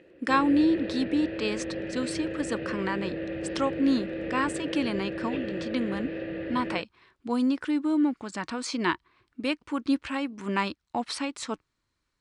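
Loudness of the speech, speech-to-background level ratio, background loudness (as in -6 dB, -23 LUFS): -29.5 LUFS, 5.0 dB, -34.5 LUFS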